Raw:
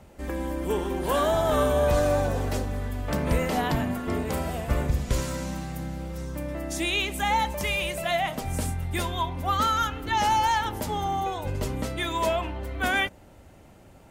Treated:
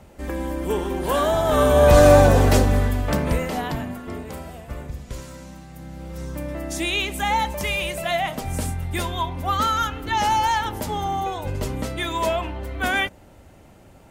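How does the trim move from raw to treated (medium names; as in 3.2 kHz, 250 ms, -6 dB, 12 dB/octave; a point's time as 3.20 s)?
1.45 s +3 dB
2.07 s +12 dB
2.77 s +12 dB
3.42 s +0.5 dB
4.67 s -8 dB
5.67 s -8 dB
6.24 s +2.5 dB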